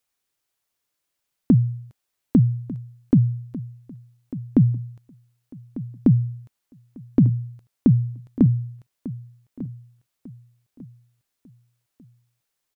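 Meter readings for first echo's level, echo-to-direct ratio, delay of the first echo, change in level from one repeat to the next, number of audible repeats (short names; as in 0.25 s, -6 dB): -16.0 dB, -15.5 dB, 1.197 s, -10.0 dB, 2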